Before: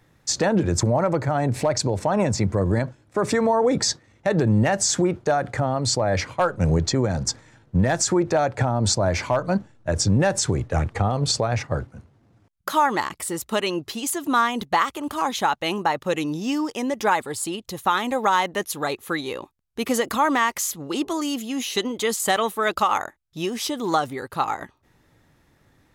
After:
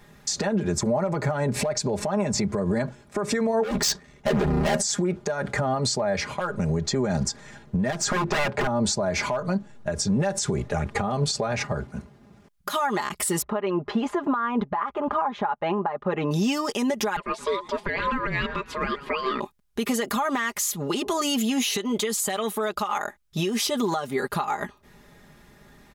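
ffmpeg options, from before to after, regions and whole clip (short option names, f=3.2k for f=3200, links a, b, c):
-filter_complex "[0:a]asettb=1/sr,asplit=3[a][b][c];[a]atrim=end=3.634[d];[b]atrim=start=3.63:end=4.8,asetpts=PTS-STARTPTS,afade=t=in:d=0.004:c=qsin,afade=t=out:st=1.166:d=0.004:c=qsin,volume=25.5dB,asoftclip=hard,volume=-25.5dB,aeval=exprs='val(0)*sin(2*PI*38*n/s)':c=same[e];[c]atrim=start=4.796[f];[d][e]acrossfade=d=0.004:c1=hsin:c2=qsin[g];[g][f]acrossfade=d=0.004:c1=qsin:c2=hsin,asettb=1/sr,asplit=3[h][i][j];[h]atrim=end=7.924[k];[i]atrim=start=7.92:end=8.67,asetpts=PTS-STARTPTS,afade=t=in:d=0.004:c=qsin,afade=t=out:st=0.746:d=0.004:c=qsin,lowpass=f=2.7k:p=1,aeval=exprs='0.0841*(abs(mod(val(0)/0.0841+3,4)-2)-1)':c=same[l];[j]atrim=start=8.666[m];[k][l]acrossfade=d=0.004:c1=hsin:c2=qsin[n];[n][m]acrossfade=d=0.004:c1=qsin:c2=hsin,asettb=1/sr,asplit=3[o][p][q];[o]atrim=end=13.424[r];[p]atrim=start=13.42:end=16.31,asetpts=PTS-STARTPTS,afade=t=in:d=0.004:c=qsin,afade=t=out:st=2.886:d=0.004:c=qsin,lowpass=1.5k,equalizer=f=950:w=0.7:g=6.5[s];[q]atrim=start=16.306[t];[r][s]acrossfade=d=0.004:c1=hsin:c2=qsin[u];[u][t]acrossfade=d=0.004:c1=qsin:c2=hsin,asettb=1/sr,asplit=3[v][w][x];[v]atrim=end=17.164[y];[w]atrim=start=17.16:end=19.4,asetpts=PTS-STARTPTS,afade=t=in:d=0.004:c=qsin,afade=t=out:st=2.236:d=0.004:c=qsin,lowpass=2.6k,aeval=exprs='val(0)*sin(2*PI*780*n/s)':c=same,asplit=5[z][aa][ab][ac][ad];[aa]adelay=121,afreqshift=-83,volume=-20.5dB[ae];[ab]adelay=242,afreqshift=-166,volume=-26.5dB[af];[ac]adelay=363,afreqshift=-249,volume=-32.5dB[ag];[ad]adelay=484,afreqshift=-332,volume=-38.6dB[ah];[z][ae][af][ag][ah]amix=inputs=5:normalize=0,atrim=end_sample=98784[ai];[x]atrim=start=19.396[aj];[y][ai]acrossfade=d=0.004:c1=hsin:c2=qsin[ak];[ak][aj]acrossfade=d=0.004:c1=qsin:c2=hsin,aecho=1:1:4.9:0.76,acompressor=threshold=-24dB:ratio=10,alimiter=limit=-22dB:level=0:latency=1:release=184,volume=6.5dB"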